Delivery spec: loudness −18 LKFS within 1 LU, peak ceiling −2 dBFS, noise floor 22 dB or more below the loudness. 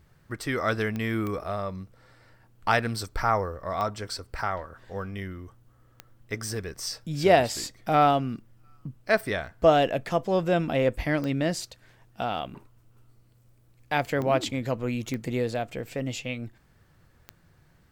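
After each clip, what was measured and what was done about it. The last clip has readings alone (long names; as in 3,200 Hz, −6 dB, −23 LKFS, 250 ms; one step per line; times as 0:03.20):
number of clicks 8; integrated loudness −27.5 LKFS; sample peak −7.5 dBFS; target loudness −18.0 LKFS
→ click removal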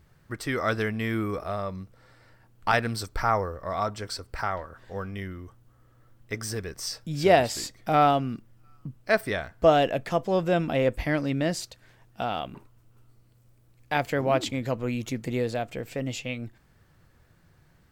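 number of clicks 0; integrated loudness −27.5 LKFS; sample peak −7.5 dBFS; target loudness −18.0 LKFS
→ level +9.5 dB
brickwall limiter −2 dBFS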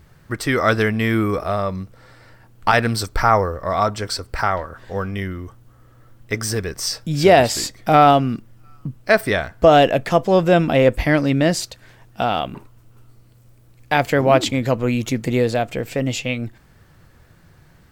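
integrated loudness −18.5 LKFS; sample peak −2.0 dBFS; background noise floor −51 dBFS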